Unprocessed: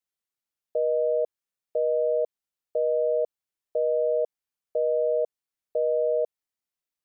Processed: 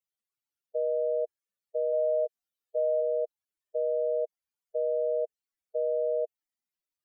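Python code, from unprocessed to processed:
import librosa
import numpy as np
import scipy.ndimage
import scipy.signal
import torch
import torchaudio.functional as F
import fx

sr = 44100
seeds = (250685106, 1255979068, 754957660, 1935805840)

y = fx.spec_expand(x, sr, power=3.2)
y = fx.doubler(y, sr, ms=18.0, db=-2.5, at=(1.92, 3.0), fade=0.02)
y = F.gain(torch.from_numpy(y), -3.5).numpy()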